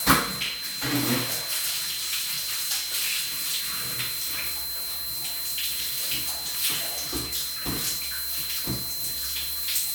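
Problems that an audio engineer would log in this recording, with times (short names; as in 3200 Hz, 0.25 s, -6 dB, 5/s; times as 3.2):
tone 4100 Hz -33 dBFS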